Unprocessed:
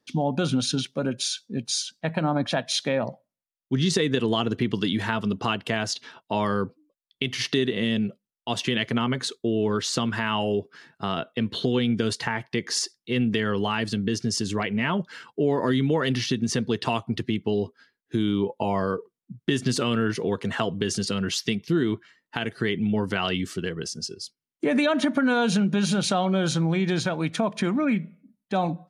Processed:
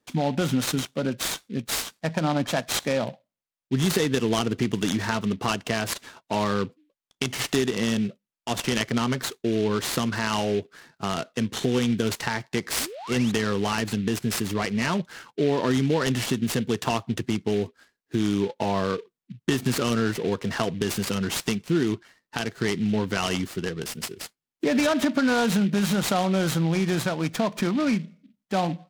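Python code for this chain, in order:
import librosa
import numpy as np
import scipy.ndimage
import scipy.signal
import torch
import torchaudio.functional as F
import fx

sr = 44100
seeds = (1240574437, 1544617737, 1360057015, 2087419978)

y = fx.spec_paint(x, sr, seeds[0], shape='rise', start_s=12.79, length_s=0.53, low_hz=220.0, high_hz=4200.0, level_db=-38.0)
y = fx.noise_mod_delay(y, sr, seeds[1], noise_hz=2600.0, depth_ms=0.042)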